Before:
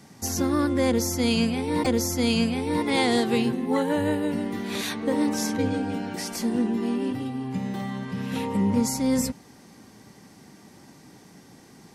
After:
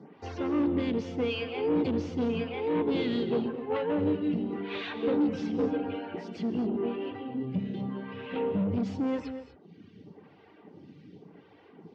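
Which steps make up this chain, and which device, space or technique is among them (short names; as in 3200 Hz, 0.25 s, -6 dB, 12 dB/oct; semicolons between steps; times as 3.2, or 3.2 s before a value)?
reverb removal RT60 1 s; vibe pedal into a guitar amplifier (photocell phaser 0.89 Hz; tube stage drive 29 dB, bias 0.25; speaker cabinet 91–3400 Hz, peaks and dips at 93 Hz +8 dB, 170 Hz +8 dB, 300 Hz +6 dB, 440 Hz +10 dB, 1800 Hz -3 dB, 2900 Hz +5 dB); non-linear reverb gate 0.27 s rising, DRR 10 dB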